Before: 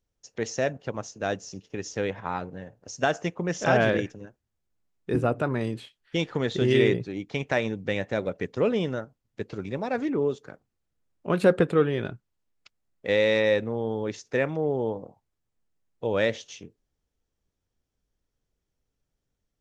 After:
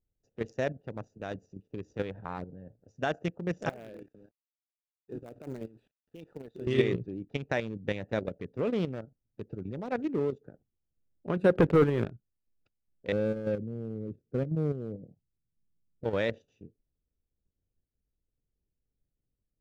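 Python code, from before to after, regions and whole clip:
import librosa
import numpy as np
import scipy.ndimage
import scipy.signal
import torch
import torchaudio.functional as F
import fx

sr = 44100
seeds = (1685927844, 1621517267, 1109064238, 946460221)

y = fx.chain(x, sr, fx.highpass(hz=420.0, slope=6),
    fx.quant_companded(bits=4),
    fx.level_steps(step_db=17), at=(3.69, 6.67))
y = fx.chain(y, sr, fx.lowpass(hz=2400.0, slope=12),
    fx.hum_notches(base_hz=50, count=2),
    fx.leveller(passes=2), at=(11.55, 12.05))
y = fx.chain(y, sr, fx.moving_average(points=46),
    fx.peak_eq(hz=160.0, db=6.0, octaves=0.92), at=(13.12, 16.04))
y = fx.wiener(y, sr, points=41)
y = fx.low_shelf(y, sr, hz=160.0, db=3.0)
y = fx.level_steps(y, sr, step_db=9)
y = F.gain(torch.from_numpy(y), -1.0).numpy()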